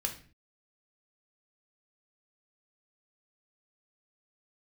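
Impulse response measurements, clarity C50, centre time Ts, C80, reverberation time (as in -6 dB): 10.5 dB, 15 ms, 15.5 dB, 0.40 s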